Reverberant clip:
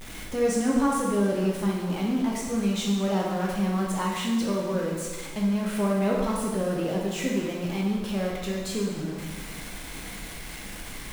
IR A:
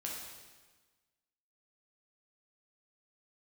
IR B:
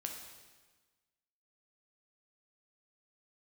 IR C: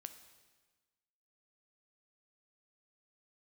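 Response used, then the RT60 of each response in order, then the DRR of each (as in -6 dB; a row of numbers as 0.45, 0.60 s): A; 1.3, 1.3, 1.3 s; -3.5, 1.5, 8.5 dB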